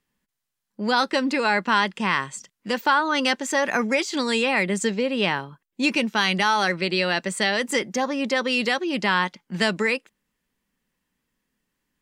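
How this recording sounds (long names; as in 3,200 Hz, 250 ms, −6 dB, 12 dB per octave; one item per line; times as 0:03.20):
background noise floor −82 dBFS
spectral slope −3.5 dB per octave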